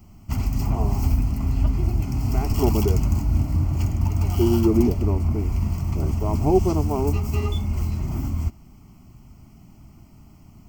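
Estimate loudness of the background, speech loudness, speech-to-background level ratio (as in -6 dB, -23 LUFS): -24.5 LUFS, -25.0 LUFS, -0.5 dB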